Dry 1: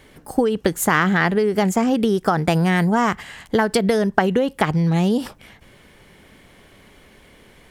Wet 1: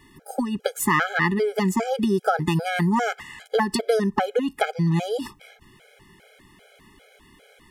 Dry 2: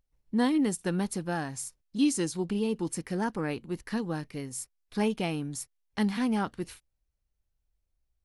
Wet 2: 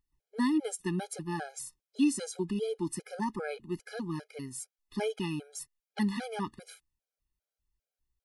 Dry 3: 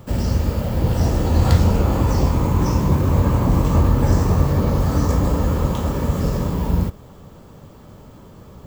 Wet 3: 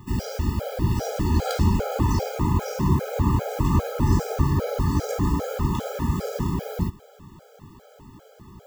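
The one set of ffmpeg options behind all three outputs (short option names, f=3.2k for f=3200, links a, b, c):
-af "lowshelf=f=150:g=-5,afftfilt=real='re*gt(sin(2*PI*2.5*pts/sr)*(1-2*mod(floor(b*sr/1024/420),2)),0)':imag='im*gt(sin(2*PI*2.5*pts/sr)*(1-2*mod(floor(b*sr/1024/420),2)),0)':win_size=1024:overlap=0.75"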